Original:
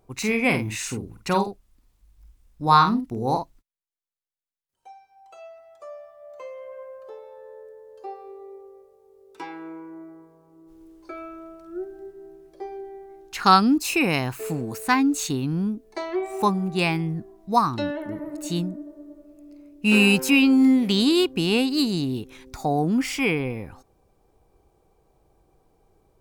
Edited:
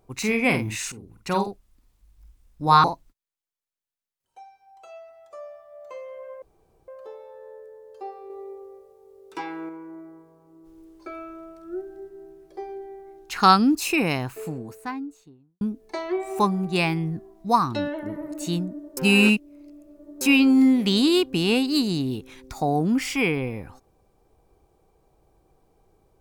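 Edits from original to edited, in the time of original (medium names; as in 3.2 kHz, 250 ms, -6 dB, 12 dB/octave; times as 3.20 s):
0.92–1.50 s: fade in, from -14.5 dB
2.84–3.33 s: delete
6.91 s: insert room tone 0.46 s
8.33–9.72 s: gain +3.5 dB
13.76–15.64 s: studio fade out
19.00–20.24 s: reverse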